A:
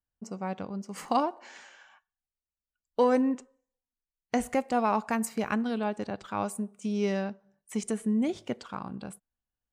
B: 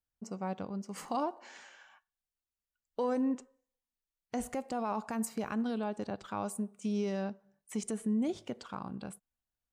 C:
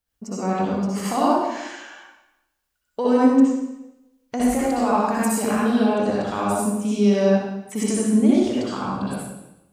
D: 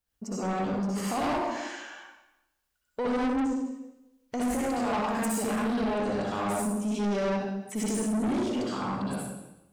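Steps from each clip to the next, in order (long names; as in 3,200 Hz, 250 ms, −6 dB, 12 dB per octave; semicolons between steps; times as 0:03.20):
dynamic equaliser 2,100 Hz, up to −5 dB, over −49 dBFS, Q 1.5; brickwall limiter −22.5 dBFS, peak gain reduction 7.5 dB; level −2.5 dB
convolution reverb RT60 0.95 s, pre-delay 57 ms, DRR −7.5 dB; level +7.5 dB
soft clipping −22.5 dBFS, distortion −7 dB; level −2.5 dB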